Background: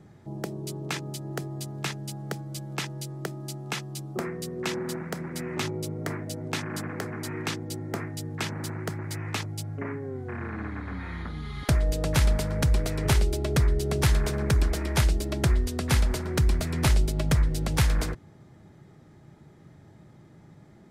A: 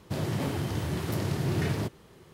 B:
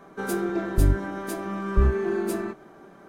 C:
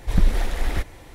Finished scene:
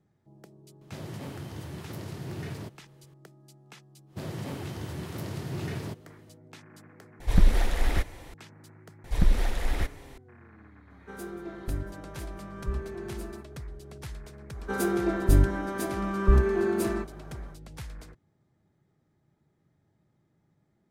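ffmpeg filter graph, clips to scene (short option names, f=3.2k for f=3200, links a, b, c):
-filter_complex "[1:a]asplit=2[a][b];[3:a]asplit=2[c][d];[2:a]asplit=2[e][f];[0:a]volume=-18.5dB[g];[e]aecho=1:1:182:0.119[h];[g]asplit=2[i][j];[i]atrim=end=7.204[k];[c]atrim=end=1.14,asetpts=PTS-STARTPTS,volume=-1.5dB[l];[j]atrim=start=8.336[m];[a]atrim=end=2.33,asetpts=PTS-STARTPTS,volume=-9dB,afade=t=in:d=0.004:c=hsin,afade=t=out:st=2.326:d=0.004:c=hsin,adelay=810[n];[b]atrim=end=2.33,asetpts=PTS-STARTPTS,volume=-6dB,afade=t=in:d=0.1,afade=t=out:st=2.23:d=0.1,adelay=4060[o];[d]atrim=end=1.14,asetpts=PTS-STARTPTS,volume=-4dB,afade=t=in:d=0.004:c=hsin,afade=t=out:st=1.136:d=0.004:c=hsin,adelay=9040[p];[h]atrim=end=3.08,asetpts=PTS-STARTPTS,volume=-12.5dB,afade=t=in:d=0.004:c=hsin,afade=t=out:st=3.076:d=0.004:c=hsin,adelay=480690S[q];[f]atrim=end=3.08,asetpts=PTS-STARTPTS,afade=t=in:d=0.1,afade=t=out:st=2.98:d=0.1,adelay=14510[r];[k][l]acrossfade=d=0.004:c1=hsin:c2=hsin[s];[s][m]acrossfade=d=0.004:c1=hsin:c2=hsin[t];[t][n][o][p][q][r]amix=inputs=6:normalize=0"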